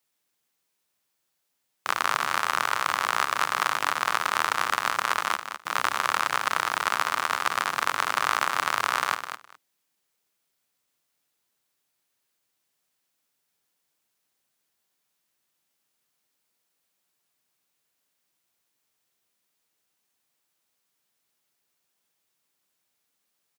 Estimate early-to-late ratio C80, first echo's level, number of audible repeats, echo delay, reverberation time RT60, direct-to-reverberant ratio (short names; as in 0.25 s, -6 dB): none, -9.0 dB, 2, 0.207 s, none, none